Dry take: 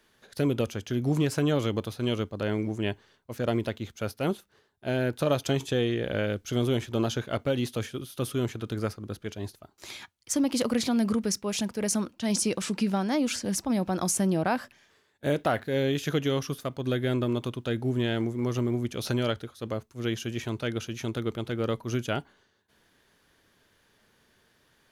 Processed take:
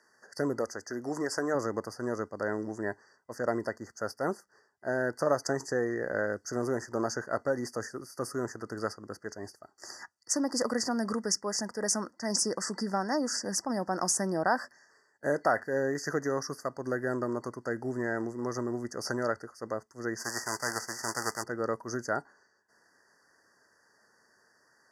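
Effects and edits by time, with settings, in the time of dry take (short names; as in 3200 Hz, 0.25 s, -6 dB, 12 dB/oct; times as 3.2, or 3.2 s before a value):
0.59–1.55 bell 140 Hz -10 dB 1.1 oct
9.4–9.93 notch 1000 Hz, Q 8.6
20.18–21.42 spectral whitening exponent 0.3
whole clip: HPF 750 Hz 6 dB/oct; FFT band-reject 2000–4500 Hz; LPF 7400 Hz 12 dB/oct; gain +3.5 dB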